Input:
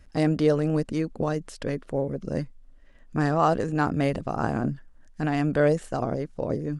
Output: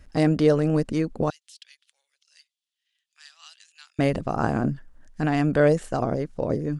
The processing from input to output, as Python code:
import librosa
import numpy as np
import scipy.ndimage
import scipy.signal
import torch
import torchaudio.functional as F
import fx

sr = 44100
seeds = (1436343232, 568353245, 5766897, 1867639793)

y = fx.ladder_highpass(x, sr, hz=2800.0, resonance_pct=45, at=(1.3, 3.99))
y = F.gain(torch.from_numpy(y), 2.5).numpy()